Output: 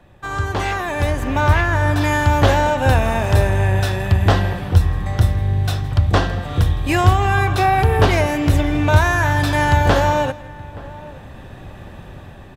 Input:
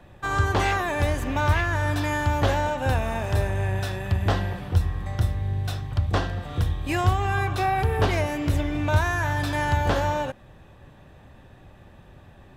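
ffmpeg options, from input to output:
-filter_complex "[0:a]asplit=2[a][b];[b]adelay=874.6,volume=-21dB,highshelf=f=4k:g=-19.7[c];[a][c]amix=inputs=2:normalize=0,dynaudnorm=f=130:g=17:m=13dB,asplit=2[d][e];[e]aecho=0:1:163:0.1[f];[d][f]amix=inputs=2:normalize=0,asplit=3[g][h][i];[g]afade=t=out:st=1.1:d=0.02[j];[h]adynamicequalizer=threshold=0.0282:dfrequency=2100:dqfactor=0.7:tfrequency=2100:tqfactor=0.7:attack=5:release=100:ratio=0.375:range=2.5:mode=cutabove:tftype=highshelf,afade=t=in:st=1.1:d=0.02,afade=t=out:st=2:d=0.02[k];[i]afade=t=in:st=2:d=0.02[l];[j][k][l]amix=inputs=3:normalize=0"

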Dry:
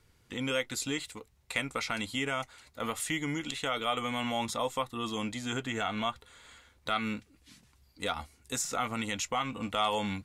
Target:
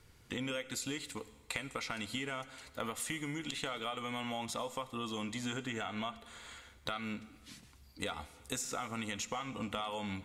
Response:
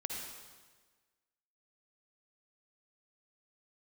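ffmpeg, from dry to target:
-filter_complex "[0:a]acompressor=threshold=-39dB:ratio=10,asplit=2[a][b];[1:a]atrim=start_sample=2205[c];[b][c]afir=irnorm=-1:irlink=0,volume=-12dB[d];[a][d]amix=inputs=2:normalize=0,volume=2dB"

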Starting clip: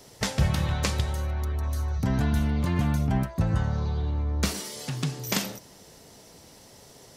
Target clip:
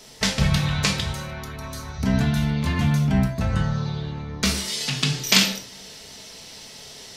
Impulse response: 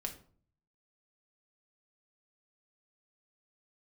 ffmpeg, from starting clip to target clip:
-filter_complex "[0:a]asetnsamples=n=441:p=0,asendcmd='4.68 equalizer g 15',equalizer=f=3.5k:w=0.48:g=8.5[a];[1:a]atrim=start_sample=2205,afade=t=out:st=0.19:d=0.01,atrim=end_sample=8820[b];[a][b]afir=irnorm=-1:irlink=0,volume=2dB"

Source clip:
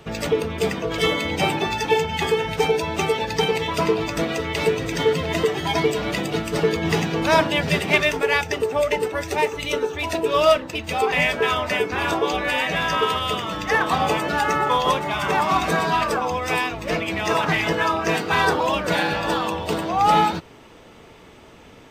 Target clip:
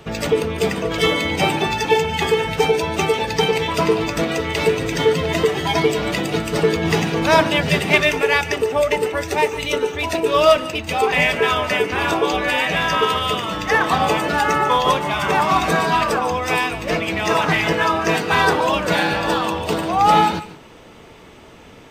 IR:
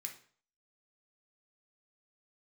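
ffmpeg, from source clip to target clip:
-filter_complex "[0:a]asplit=2[a][b];[1:a]atrim=start_sample=2205,asetrate=52920,aresample=44100,adelay=145[c];[b][c]afir=irnorm=-1:irlink=0,volume=-8.5dB[d];[a][d]amix=inputs=2:normalize=0,volume=3dB"

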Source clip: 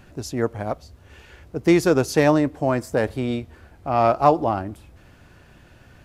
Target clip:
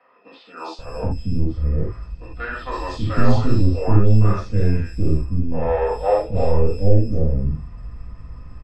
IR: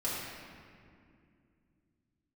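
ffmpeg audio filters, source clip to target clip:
-filter_complex "[0:a]aeval=exprs='if(lt(val(0),0),0.708*val(0),val(0))':c=same,bass=f=250:g=14,treble=f=4k:g=-11,acrossover=split=140|540|1900[a][b][c][d];[a]acrusher=samples=12:mix=1:aa=0.000001[e];[b]acompressor=threshold=-28dB:ratio=6[f];[e][f][c][d]amix=inputs=4:normalize=0,asetrate=30870,aresample=44100,lowpass=f=5.4k:t=q:w=1.8,acrossover=split=450|3300[g][h][i];[i]adelay=320[j];[g]adelay=780[k];[k][h][j]amix=inputs=3:normalize=0[l];[1:a]atrim=start_sample=2205,atrim=end_sample=3969[m];[l][m]afir=irnorm=-1:irlink=0,volume=-1.5dB"

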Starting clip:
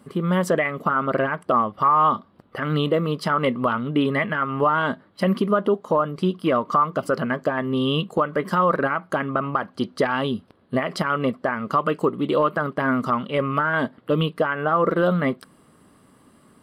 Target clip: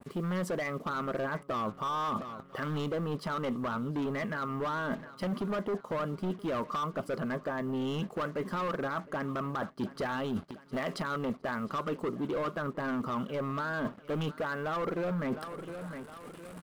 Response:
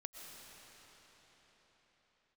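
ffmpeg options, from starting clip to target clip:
-af "asoftclip=type=hard:threshold=-20.5dB,acrusher=bits=7:mix=0:aa=0.5,aecho=1:1:710|1420|2130:0.0794|0.0357|0.0161,areverse,acompressor=threshold=-36dB:ratio=6,areverse,adynamicequalizer=threshold=0.002:dfrequency=1800:dqfactor=0.7:tfrequency=1800:tqfactor=0.7:attack=5:release=100:ratio=0.375:range=3.5:mode=cutabove:tftype=highshelf,volume=4dB"

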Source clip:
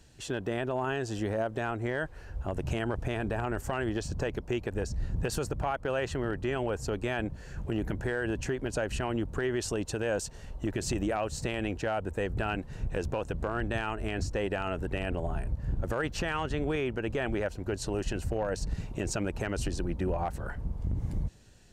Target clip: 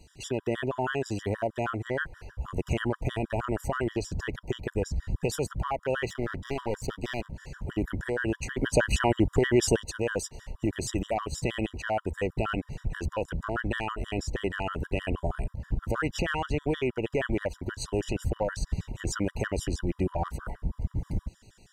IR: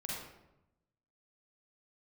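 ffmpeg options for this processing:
-filter_complex "[0:a]asettb=1/sr,asplit=3[a][b][c];[a]atrim=end=6.084[d];[b]atrim=start=6.08:end=7.38,asetpts=PTS-STARTPTS,afade=t=in:d=0.004:c=qsin,afade=t=out:st=1.296:d=0.004:c=qsin,aeval=exprs='clip(val(0),-1,0.01)':c=same[e];[c]atrim=start=7.376[f];[d][e]acrossfade=d=0.004:c1=hsin:c2=qsin[g];[g][f]acrossfade=d=0.004:c1=qsin:c2=hsin,asplit=3[h][i][j];[h]afade=t=out:st=8.55:d=0.02[k];[i]acontrast=54,afade=t=in:st=8.55:d=0.02,afade=t=out:st=9.81:d=0.02[l];[j]afade=t=in:st=9.81:d=0.02[m];[k][l][m]amix=inputs=3:normalize=0,afftfilt=real='re*gt(sin(2*PI*6.3*pts/sr)*(1-2*mod(floor(b*sr/1024/970),2)),0)':imag='im*gt(sin(2*PI*6.3*pts/sr)*(1-2*mod(floor(b*sr/1024/970),2)),0)':win_size=1024:overlap=0.75,volume=4.5dB"

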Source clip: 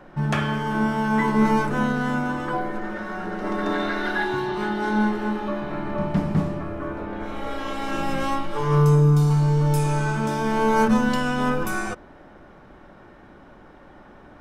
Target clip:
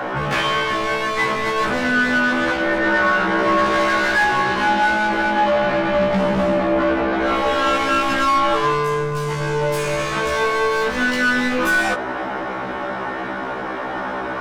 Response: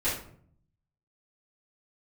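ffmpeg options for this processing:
-filter_complex "[0:a]asplit=2[a][b];[b]highpass=f=720:p=1,volume=28dB,asoftclip=type=tanh:threshold=-8dB[c];[a][c]amix=inputs=2:normalize=0,lowpass=f=3k:p=1,volume=-6dB,alimiter=limit=-19dB:level=0:latency=1:release=42,afftfilt=real='re*1.73*eq(mod(b,3),0)':imag='im*1.73*eq(mod(b,3),0)':win_size=2048:overlap=0.75,volume=7.5dB"

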